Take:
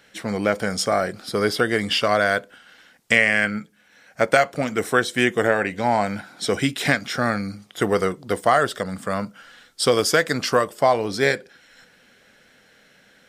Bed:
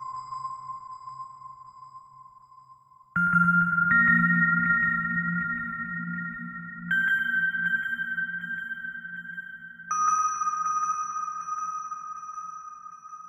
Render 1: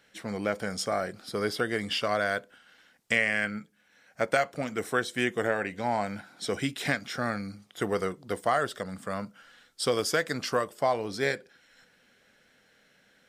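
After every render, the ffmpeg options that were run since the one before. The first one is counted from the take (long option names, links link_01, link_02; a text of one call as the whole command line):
ffmpeg -i in.wav -af "volume=-8.5dB" out.wav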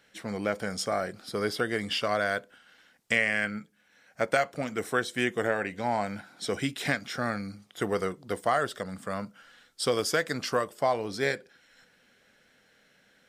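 ffmpeg -i in.wav -af anull out.wav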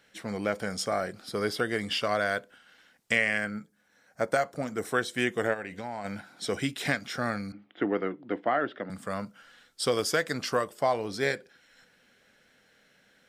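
ffmpeg -i in.wav -filter_complex "[0:a]asettb=1/sr,asplit=3[link_01][link_02][link_03];[link_01]atrim=end=3.384[link_04];[link_02]atrim=start=3.38:end=4.85,asetpts=PTS-STARTPTS,afade=type=in:duration=0.004:curve=qsin,afade=type=out:start_time=1.466:duration=0.004:curve=qsin,equalizer=frequency=2700:width_type=o:width=1:gain=-8.5[link_05];[link_03]atrim=start=4.846[link_06];[link_04][link_05]acrossfade=duration=0.004:curve1=hsin:curve2=qsin[link_07];[link_07][link_06]acrossfade=duration=0.004:curve1=qsin:curve2=hsin,asplit=3[link_08][link_09][link_10];[link_08]afade=type=out:start_time=5.53:duration=0.02[link_11];[link_09]acompressor=threshold=-33dB:ratio=4:attack=3.2:release=140:knee=1:detection=peak,afade=type=in:start_time=5.53:duration=0.02,afade=type=out:start_time=6.04:duration=0.02[link_12];[link_10]afade=type=in:start_time=6.04:duration=0.02[link_13];[link_11][link_12][link_13]amix=inputs=3:normalize=0,asettb=1/sr,asplit=3[link_14][link_15][link_16];[link_14]atrim=end=7.524[link_17];[link_15]atrim=start=7.52:end=8.9,asetpts=PTS-STARTPTS,afade=type=in:duration=0.004:curve=qsin,afade=type=out:start_time=1.376:duration=0.004:curve=qsin,highpass=frequency=140:width=0.5412,highpass=frequency=140:width=1.3066,equalizer=frequency=160:width_type=q:width=4:gain=-7,equalizer=frequency=300:width_type=q:width=4:gain=10,equalizer=frequency=450:width_type=q:width=4:gain=-3,equalizer=frequency=1100:width_type=q:width=4:gain=-5,lowpass=frequency=2800:width=0.5412,lowpass=frequency=2800:width=1.3066[link_18];[link_16]atrim=start=8.896[link_19];[link_17][link_18]acrossfade=duration=0.004:curve1=hsin:curve2=qsin[link_20];[link_20][link_19]acrossfade=duration=0.004:curve1=qsin:curve2=hsin" out.wav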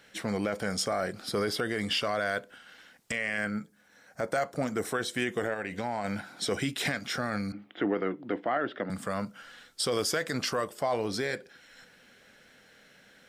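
ffmpeg -i in.wav -filter_complex "[0:a]asplit=2[link_01][link_02];[link_02]acompressor=threshold=-36dB:ratio=6,volume=-1dB[link_03];[link_01][link_03]amix=inputs=2:normalize=0,alimiter=limit=-19dB:level=0:latency=1:release=21" out.wav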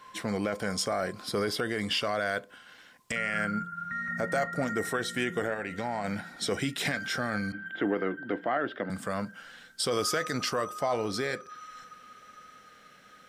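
ffmpeg -i in.wav -i bed.wav -filter_complex "[1:a]volume=-14.5dB[link_01];[0:a][link_01]amix=inputs=2:normalize=0" out.wav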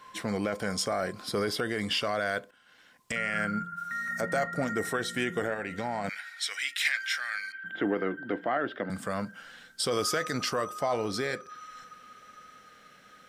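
ffmpeg -i in.wav -filter_complex "[0:a]asplit=3[link_01][link_02][link_03];[link_01]afade=type=out:start_time=3.76:duration=0.02[link_04];[link_02]bass=frequency=250:gain=-10,treble=frequency=4000:gain=14,afade=type=in:start_time=3.76:duration=0.02,afade=type=out:start_time=4.2:duration=0.02[link_05];[link_03]afade=type=in:start_time=4.2:duration=0.02[link_06];[link_04][link_05][link_06]amix=inputs=3:normalize=0,asettb=1/sr,asplit=3[link_07][link_08][link_09];[link_07]atrim=end=6.094[link_10];[link_08]atrim=start=6.09:end=7.64,asetpts=PTS-STARTPTS,afade=type=in:duration=0.004:curve=qsin,afade=type=out:start_time=1.546:duration=0.004:curve=qsin,highpass=frequency=2000:width_type=q:width=2.1[link_11];[link_09]atrim=start=7.636[link_12];[link_10][link_11]acrossfade=duration=0.004:curve1=hsin:curve2=qsin[link_13];[link_13][link_12]acrossfade=duration=0.004:curve1=qsin:curve2=hsin,asplit=2[link_14][link_15];[link_14]atrim=end=2.51,asetpts=PTS-STARTPTS,afade=type=out:start_time=2.506:duration=0.004:curve=hsin:silence=0.188365[link_16];[link_15]atrim=start=2.51,asetpts=PTS-STARTPTS,afade=type=in:duration=0.65:silence=0.188365[link_17];[link_16][link_17]concat=n=2:v=0:a=1" out.wav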